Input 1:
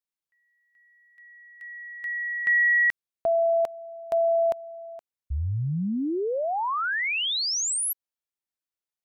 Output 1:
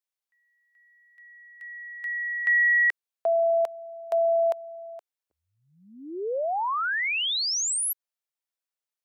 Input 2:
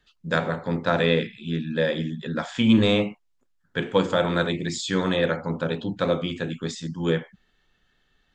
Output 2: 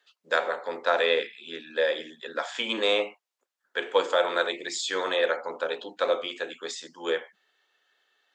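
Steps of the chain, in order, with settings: HPF 430 Hz 24 dB/oct

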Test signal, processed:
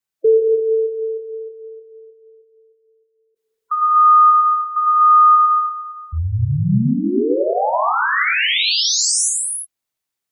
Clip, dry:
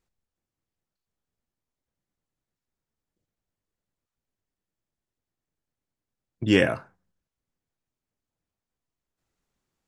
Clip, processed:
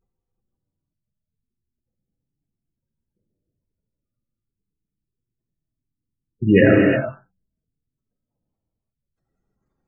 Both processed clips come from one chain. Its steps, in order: spectral gate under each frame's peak -15 dB strong; non-linear reverb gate 0.38 s flat, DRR -2 dB; gain +5.5 dB

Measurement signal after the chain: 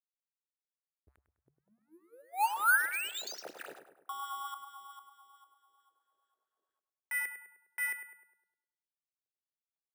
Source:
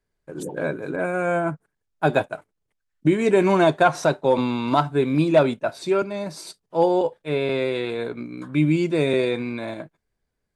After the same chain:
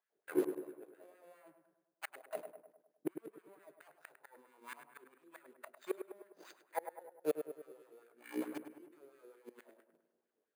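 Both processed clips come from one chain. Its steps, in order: median filter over 41 samples; notches 60/120/180/240 Hz; dynamic EQ 1200 Hz, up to +4 dB, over -37 dBFS, Q 1.3; reverse; compressor 12:1, threshold -26 dBFS; reverse; flipped gate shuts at -25 dBFS, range -33 dB; LFO high-pass sine 4.5 Hz 370–1700 Hz; darkening echo 0.102 s, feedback 54%, low-pass 1900 Hz, level -8 dB; careless resampling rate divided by 4×, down filtered, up hold

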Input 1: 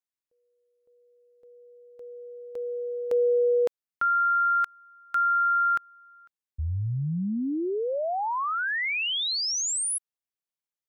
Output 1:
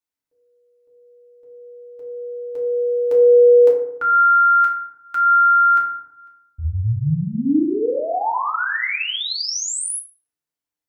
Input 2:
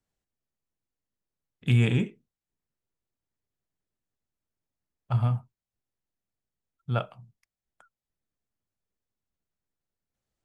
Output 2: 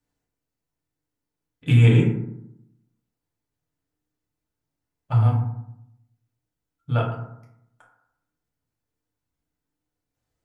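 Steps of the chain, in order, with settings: FDN reverb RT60 0.78 s, low-frequency decay 1.25×, high-frequency decay 0.4×, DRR -4 dB

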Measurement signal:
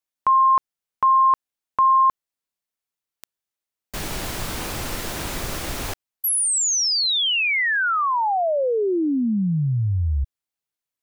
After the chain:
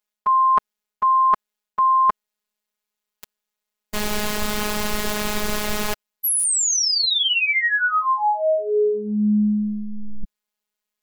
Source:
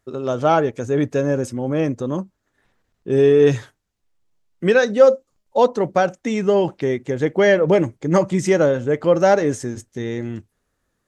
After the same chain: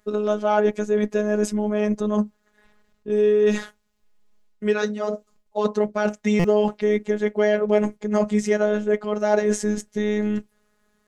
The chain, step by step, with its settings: high shelf 5400 Hz -3.5 dB; reverse; compressor 6:1, threshold -24 dBFS; reverse; robotiser 210 Hz; stuck buffer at 6.39, samples 256, times 8; gain +8.5 dB

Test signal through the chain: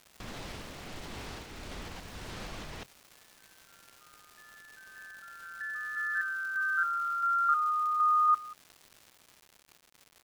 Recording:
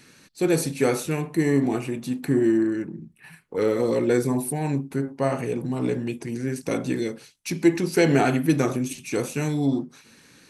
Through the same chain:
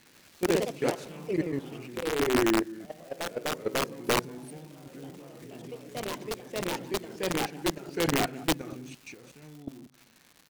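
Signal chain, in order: LPF 4900 Hz 12 dB/oct; de-hum 134 Hz, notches 3; level quantiser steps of 20 dB; on a send: echo 0.186 s -21.5 dB; on the sum: random-step tremolo, depth 80%; crackle 240/s -40 dBFS; wrapped overs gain 15.5 dB; echoes that change speed 0.104 s, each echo +2 st, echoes 3; gain -2 dB

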